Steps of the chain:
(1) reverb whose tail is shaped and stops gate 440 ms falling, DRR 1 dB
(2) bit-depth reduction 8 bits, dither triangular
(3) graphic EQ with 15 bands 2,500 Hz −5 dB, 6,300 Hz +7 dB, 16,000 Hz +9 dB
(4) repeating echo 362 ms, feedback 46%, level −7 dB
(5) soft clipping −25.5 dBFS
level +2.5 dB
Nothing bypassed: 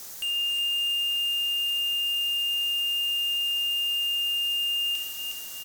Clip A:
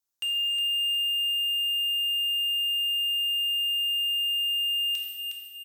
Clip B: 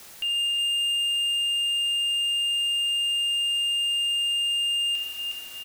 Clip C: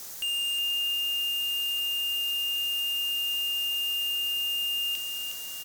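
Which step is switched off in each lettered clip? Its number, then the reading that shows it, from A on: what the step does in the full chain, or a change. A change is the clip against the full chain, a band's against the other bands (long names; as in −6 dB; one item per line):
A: 2, distortion level −24 dB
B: 3, change in crest factor −1.5 dB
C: 1, change in crest factor +2.0 dB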